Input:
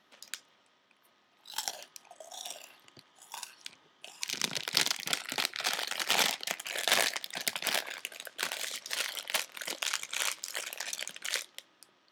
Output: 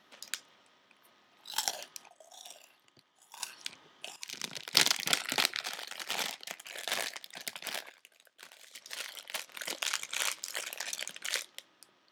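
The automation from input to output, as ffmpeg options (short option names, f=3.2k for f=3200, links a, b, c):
-af "asetnsamples=n=441:p=0,asendcmd='2.09 volume volume -7.5dB;3.4 volume volume 4dB;4.16 volume volume -7dB;4.75 volume volume 3dB;5.59 volume volume -7.5dB;7.9 volume volume -18dB;8.75 volume volume -7dB;9.48 volume volume -0.5dB',volume=3dB"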